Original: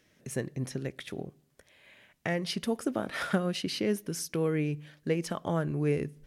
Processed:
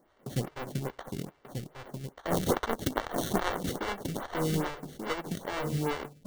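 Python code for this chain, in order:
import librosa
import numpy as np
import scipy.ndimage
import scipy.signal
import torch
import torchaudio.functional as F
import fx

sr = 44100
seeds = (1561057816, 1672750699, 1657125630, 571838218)

y = fx.halfwave_hold(x, sr)
y = fx.high_shelf_res(y, sr, hz=1600.0, db=12.0, q=1.5, at=(2.3, 3.5))
y = fx.sample_hold(y, sr, seeds[0], rate_hz=2500.0, jitter_pct=0)
y = fx.rider(y, sr, range_db=4, speed_s=2.0)
y = y + 10.0 ** (-6.5 / 20.0) * np.pad(y, (int(1187 * sr / 1000.0), 0))[:len(y)]
y = fx.stagger_phaser(y, sr, hz=2.4)
y = y * librosa.db_to_amplitude(-5.0)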